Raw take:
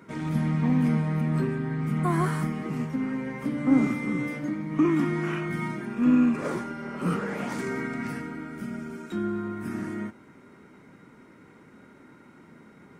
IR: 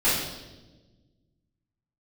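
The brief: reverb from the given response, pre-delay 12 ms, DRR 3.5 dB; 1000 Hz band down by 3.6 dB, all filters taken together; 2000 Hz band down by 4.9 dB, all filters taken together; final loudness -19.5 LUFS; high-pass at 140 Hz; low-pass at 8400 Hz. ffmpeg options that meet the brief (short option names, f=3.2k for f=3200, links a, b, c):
-filter_complex "[0:a]highpass=140,lowpass=8.4k,equalizer=f=1k:t=o:g=-3,equalizer=f=2k:t=o:g=-5,asplit=2[a][b];[1:a]atrim=start_sample=2205,adelay=12[c];[b][c]afir=irnorm=-1:irlink=0,volume=-18.5dB[d];[a][d]amix=inputs=2:normalize=0,volume=7dB"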